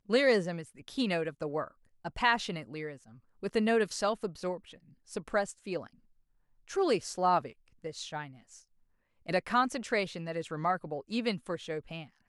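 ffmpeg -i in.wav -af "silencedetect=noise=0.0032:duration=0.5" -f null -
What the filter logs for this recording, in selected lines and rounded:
silence_start: 5.88
silence_end: 6.68 | silence_duration: 0.79
silence_start: 8.60
silence_end: 9.26 | silence_duration: 0.66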